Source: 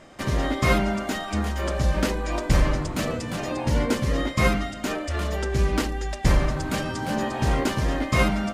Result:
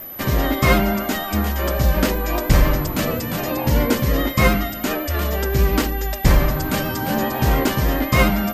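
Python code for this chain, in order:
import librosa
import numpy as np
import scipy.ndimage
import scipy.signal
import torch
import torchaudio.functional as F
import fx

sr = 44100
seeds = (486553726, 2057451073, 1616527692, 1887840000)

y = x + 10.0 ** (-37.0 / 20.0) * np.sin(2.0 * np.pi * 12000.0 * np.arange(len(x)) / sr)
y = fx.vibrato(y, sr, rate_hz=9.8, depth_cents=23.0)
y = y * 10.0 ** (5.0 / 20.0)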